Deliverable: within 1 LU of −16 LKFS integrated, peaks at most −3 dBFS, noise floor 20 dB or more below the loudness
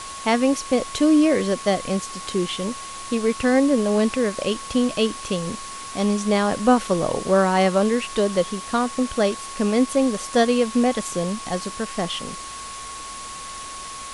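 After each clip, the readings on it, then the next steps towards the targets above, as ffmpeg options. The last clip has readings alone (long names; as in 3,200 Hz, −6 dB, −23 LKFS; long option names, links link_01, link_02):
interfering tone 1,100 Hz; level of the tone −35 dBFS; background noise floor −35 dBFS; target noise floor −42 dBFS; integrated loudness −21.5 LKFS; sample peak −6.0 dBFS; target loudness −16.0 LKFS
→ -af "bandreject=frequency=1100:width=30"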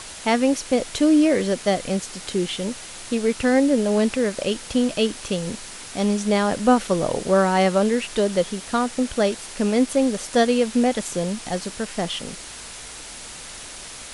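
interfering tone none found; background noise floor −38 dBFS; target noise floor −42 dBFS
→ -af "afftdn=noise_reduction=6:noise_floor=-38"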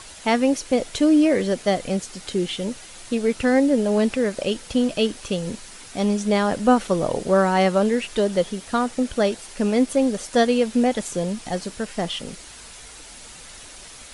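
background noise floor −42 dBFS; integrated loudness −22.0 LKFS; sample peak −6.0 dBFS; target loudness −16.0 LKFS
→ -af "volume=6dB,alimiter=limit=-3dB:level=0:latency=1"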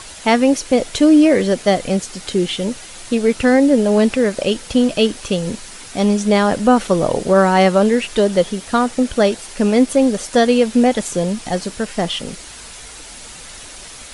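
integrated loudness −16.0 LKFS; sample peak −3.0 dBFS; background noise floor −36 dBFS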